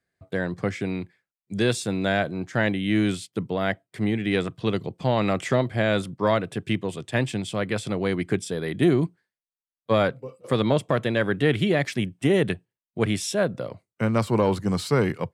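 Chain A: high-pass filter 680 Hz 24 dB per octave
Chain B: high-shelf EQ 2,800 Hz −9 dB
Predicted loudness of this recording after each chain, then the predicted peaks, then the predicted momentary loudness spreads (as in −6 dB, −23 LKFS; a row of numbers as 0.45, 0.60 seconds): −31.5, −25.5 LKFS; −11.5, −9.5 dBFS; 10, 8 LU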